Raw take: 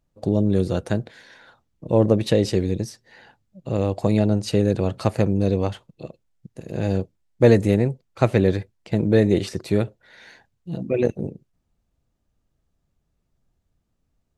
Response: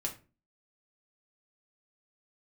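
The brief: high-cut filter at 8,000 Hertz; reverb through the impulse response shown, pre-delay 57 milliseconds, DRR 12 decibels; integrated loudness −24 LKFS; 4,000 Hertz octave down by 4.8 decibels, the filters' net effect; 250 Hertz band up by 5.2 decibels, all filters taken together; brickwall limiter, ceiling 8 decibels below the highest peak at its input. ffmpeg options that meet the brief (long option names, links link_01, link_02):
-filter_complex "[0:a]lowpass=8000,equalizer=frequency=250:width_type=o:gain=7,equalizer=frequency=4000:width_type=o:gain=-5.5,alimiter=limit=-7dB:level=0:latency=1,asplit=2[link_01][link_02];[1:a]atrim=start_sample=2205,adelay=57[link_03];[link_02][link_03]afir=irnorm=-1:irlink=0,volume=-13.5dB[link_04];[link_01][link_04]amix=inputs=2:normalize=0,volume=-3.5dB"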